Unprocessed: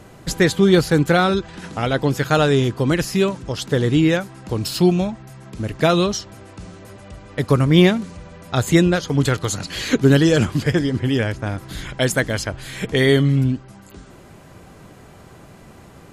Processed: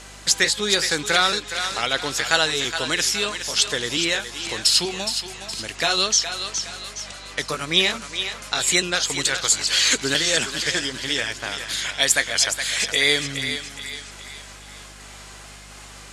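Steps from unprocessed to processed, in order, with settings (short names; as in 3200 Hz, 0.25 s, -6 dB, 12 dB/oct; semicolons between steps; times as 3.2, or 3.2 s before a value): trilling pitch shifter +1 st, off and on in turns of 0.441 s; in parallel at +1 dB: compressor, threshold -29 dBFS, peak gain reduction 19 dB; on the sum: weighting filter ITU-R 468; on a send: thinning echo 0.417 s, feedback 46%, high-pass 540 Hz, level -8 dB; on the sum: hum 50 Hz, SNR 23 dB; gain -4.5 dB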